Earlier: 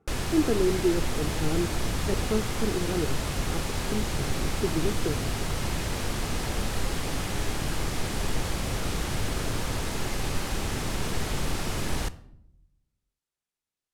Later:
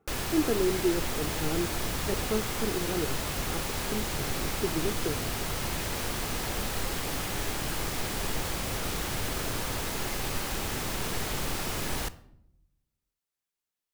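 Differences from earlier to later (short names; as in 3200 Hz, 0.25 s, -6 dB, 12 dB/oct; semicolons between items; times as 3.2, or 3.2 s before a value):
background: remove LPF 11000 Hz 12 dB/oct; master: add low shelf 290 Hz -6 dB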